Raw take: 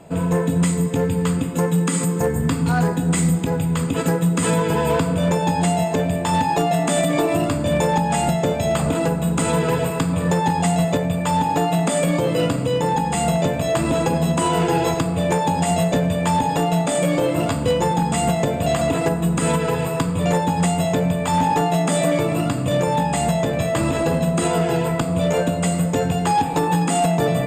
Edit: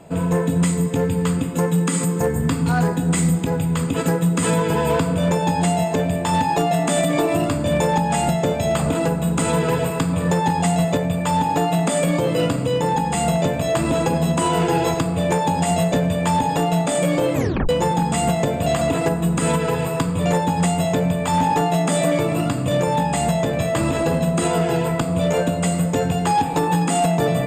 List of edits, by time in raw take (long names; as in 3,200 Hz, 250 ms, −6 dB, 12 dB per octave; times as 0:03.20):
0:17.34: tape stop 0.35 s